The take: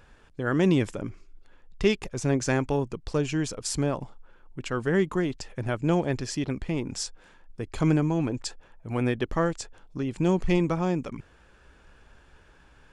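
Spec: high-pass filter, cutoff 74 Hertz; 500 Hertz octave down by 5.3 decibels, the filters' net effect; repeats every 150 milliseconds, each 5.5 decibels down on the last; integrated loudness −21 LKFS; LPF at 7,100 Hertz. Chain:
high-pass filter 74 Hz
low-pass filter 7,100 Hz
parametric band 500 Hz −7.5 dB
repeating echo 150 ms, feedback 53%, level −5.5 dB
level +7.5 dB

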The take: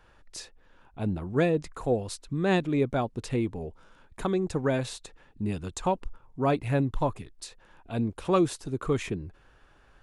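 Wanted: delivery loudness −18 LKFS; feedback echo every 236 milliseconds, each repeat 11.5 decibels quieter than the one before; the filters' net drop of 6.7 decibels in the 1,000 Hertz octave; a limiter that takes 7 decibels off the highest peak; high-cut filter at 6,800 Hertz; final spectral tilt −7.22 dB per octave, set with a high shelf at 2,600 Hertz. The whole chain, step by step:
low-pass filter 6,800 Hz
parametric band 1,000 Hz −9 dB
high-shelf EQ 2,600 Hz −4 dB
brickwall limiter −22 dBFS
repeating echo 236 ms, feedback 27%, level −11.5 dB
level +15 dB

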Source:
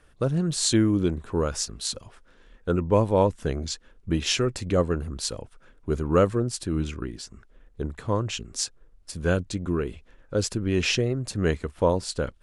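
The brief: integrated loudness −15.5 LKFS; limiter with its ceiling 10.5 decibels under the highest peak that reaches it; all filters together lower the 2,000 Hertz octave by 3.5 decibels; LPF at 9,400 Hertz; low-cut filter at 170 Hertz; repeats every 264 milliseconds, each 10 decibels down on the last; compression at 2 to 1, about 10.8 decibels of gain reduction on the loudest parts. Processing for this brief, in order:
high-pass filter 170 Hz
low-pass filter 9,400 Hz
parametric band 2,000 Hz −5 dB
downward compressor 2 to 1, threshold −36 dBFS
brickwall limiter −27 dBFS
repeating echo 264 ms, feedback 32%, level −10 dB
level +23.5 dB

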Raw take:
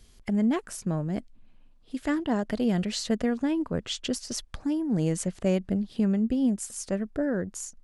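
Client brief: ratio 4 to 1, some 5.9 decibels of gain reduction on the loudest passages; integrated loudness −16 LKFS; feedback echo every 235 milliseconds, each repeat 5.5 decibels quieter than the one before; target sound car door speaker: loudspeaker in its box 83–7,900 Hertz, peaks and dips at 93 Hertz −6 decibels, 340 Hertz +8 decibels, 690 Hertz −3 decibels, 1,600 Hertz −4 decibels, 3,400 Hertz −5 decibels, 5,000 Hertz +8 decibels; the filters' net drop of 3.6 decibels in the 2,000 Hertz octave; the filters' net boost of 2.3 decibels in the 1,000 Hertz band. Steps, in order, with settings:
parametric band 1,000 Hz +5.5 dB
parametric band 2,000 Hz −3.5 dB
downward compressor 4 to 1, threshold −27 dBFS
loudspeaker in its box 83–7,900 Hz, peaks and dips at 93 Hz −6 dB, 340 Hz +8 dB, 690 Hz −3 dB, 1,600 Hz −4 dB, 3,400 Hz −5 dB, 5,000 Hz +8 dB
repeating echo 235 ms, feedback 53%, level −5.5 dB
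level +13 dB

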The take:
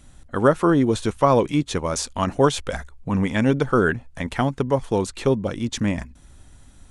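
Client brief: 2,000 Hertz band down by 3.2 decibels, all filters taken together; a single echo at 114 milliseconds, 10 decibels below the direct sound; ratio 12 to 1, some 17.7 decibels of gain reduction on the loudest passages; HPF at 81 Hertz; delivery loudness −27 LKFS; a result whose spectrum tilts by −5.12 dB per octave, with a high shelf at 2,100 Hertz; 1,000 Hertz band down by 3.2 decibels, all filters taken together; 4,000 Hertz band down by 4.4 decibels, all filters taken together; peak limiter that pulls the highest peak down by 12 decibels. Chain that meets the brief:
high-pass filter 81 Hz
parametric band 1,000 Hz −3.5 dB
parametric band 2,000 Hz −3 dB
high-shelf EQ 2,100 Hz +3 dB
parametric band 4,000 Hz −7.5 dB
downward compressor 12 to 1, threshold −31 dBFS
brickwall limiter −31 dBFS
single-tap delay 114 ms −10 dB
level +14 dB

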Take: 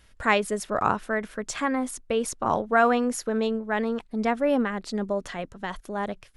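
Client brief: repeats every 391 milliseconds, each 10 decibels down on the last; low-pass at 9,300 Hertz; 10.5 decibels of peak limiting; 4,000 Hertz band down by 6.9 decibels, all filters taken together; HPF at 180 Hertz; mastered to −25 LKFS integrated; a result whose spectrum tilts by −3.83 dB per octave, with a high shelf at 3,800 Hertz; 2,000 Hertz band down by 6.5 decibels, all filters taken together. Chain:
high-pass filter 180 Hz
low-pass filter 9,300 Hz
parametric band 2,000 Hz −7.5 dB
high-shelf EQ 3,800 Hz +3.5 dB
parametric band 4,000 Hz −9 dB
brickwall limiter −18.5 dBFS
repeating echo 391 ms, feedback 32%, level −10 dB
level +4.5 dB

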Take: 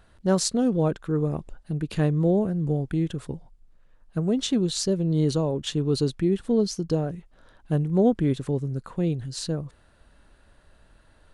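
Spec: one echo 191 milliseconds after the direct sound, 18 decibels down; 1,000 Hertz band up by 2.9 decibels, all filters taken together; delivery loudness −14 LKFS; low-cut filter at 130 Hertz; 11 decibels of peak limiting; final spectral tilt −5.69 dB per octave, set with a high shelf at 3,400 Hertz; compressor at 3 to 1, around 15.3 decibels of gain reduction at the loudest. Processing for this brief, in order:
high-pass filter 130 Hz
parametric band 1,000 Hz +4.5 dB
high-shelf EQ 3,400 Hz −3.5 dB
downward compressor 3 to 1, threshold −37 dBFS
brickwall limiter −34.5 dBFS
single-tap delay 191 ms −18 dB
level +29.5 dB

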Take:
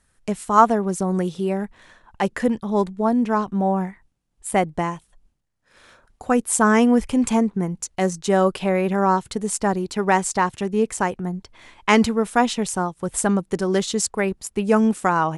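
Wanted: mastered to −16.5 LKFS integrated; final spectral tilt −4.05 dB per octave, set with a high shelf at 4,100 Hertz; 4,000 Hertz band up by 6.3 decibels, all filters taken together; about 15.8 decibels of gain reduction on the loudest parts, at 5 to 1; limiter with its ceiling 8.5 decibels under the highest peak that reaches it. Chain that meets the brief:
parametric band 4,000 Hz +3.5 dB
high-shelf EQ 4,100 Hz +8 dB
downward compressor 5 to 1, threshold −25 dBFS
level +13.5 dB
brickwall limiter −4.5 dBFS

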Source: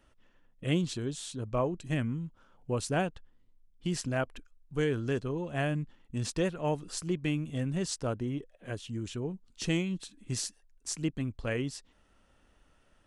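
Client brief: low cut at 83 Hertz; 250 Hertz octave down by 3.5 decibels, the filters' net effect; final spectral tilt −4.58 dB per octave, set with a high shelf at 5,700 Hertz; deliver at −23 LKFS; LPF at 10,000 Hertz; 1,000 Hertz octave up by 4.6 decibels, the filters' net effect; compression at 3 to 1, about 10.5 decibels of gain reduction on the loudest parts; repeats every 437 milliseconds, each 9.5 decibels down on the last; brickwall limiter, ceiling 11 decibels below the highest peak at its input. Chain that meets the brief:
high-pass filter 83 Hz
low-pass filter 10,000 Hz
parametric band 250 Hz −5.5 dB
parametric band 1,000 Hz +6.5 dB
high-shelf EQ 5,700 Hz +5 dB
downward compressor 3 to 1, threshold −37 dBFS
brickwall limiter −33 dBFS
repeating echo 437 ms, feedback 33%, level −9.5 dB
level +20 dB

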